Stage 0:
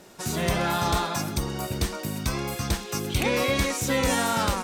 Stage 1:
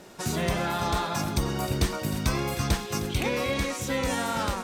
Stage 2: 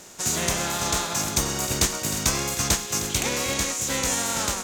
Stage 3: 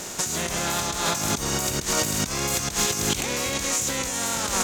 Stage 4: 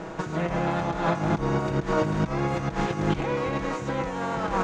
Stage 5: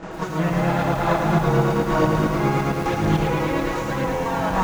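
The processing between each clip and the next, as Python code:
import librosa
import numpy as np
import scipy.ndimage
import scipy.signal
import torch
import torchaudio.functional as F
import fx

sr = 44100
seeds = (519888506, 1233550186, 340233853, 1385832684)

y1 = fx.high_shelf(x, sr, hz=5900.0, db=-4.5)
y1 = fx.rider(y1, sr, range_db=10, speed_s=0.5)
y1 = y1 + 10.0 ** (-14.0 / 20.0) * np.pad(y1, (int(310 * sr / 1000.0), 0))[:len(y1)]
y1 = y1 * librosa.db_to_amplitude(-1.5)
y2 = fx.spec_flatten(y1, sr, power=0.63)
y2 = fx.peak_eq(y2, sr, hz=6800.0, db=11.5, octaves=0.54)
y3 = fx.over_compress(y2, sr, threshold_db=-32.0, ratio=-1.0)
y3 = y3 * librosa.db_to_amplitude(5.5)
y4 = scipy.signal.sosfilt(scipy.signal.butter(2, 1300.0, 'lowpass', fs=sr, output='sos'), y3)
y4 = y4 + 0.65 * np.pad(y4, (int(6.2 * sr / 1000.0), 0))[:len(y4)]
y4 = y4 * librosa.db_to_amplitude(2.5)
y5 = fx.chorus_voices(y4, sr, voices=2, hz=0.49, base_ms=27, depth_ms=3.5, mix_pct=70)
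y5 = fx.buffer_glitch(y5, sr, at_s=(2.73, 4.13), block=512, repeats=10)
y5 = fx.echo_crushed(y5, sr, ms=109, feedback_pct=80, bits=8, wet_db=-6)
y5 = y5 * librosa.db_to_amplitude(6.0)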